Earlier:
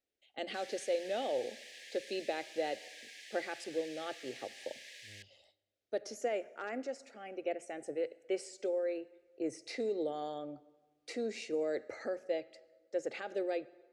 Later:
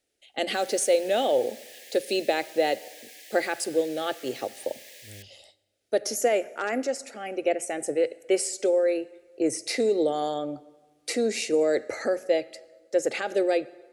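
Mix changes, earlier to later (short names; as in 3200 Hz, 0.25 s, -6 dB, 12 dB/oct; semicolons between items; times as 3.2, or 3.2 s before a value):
speech +11.5 dB; master: remove air absorption 86 m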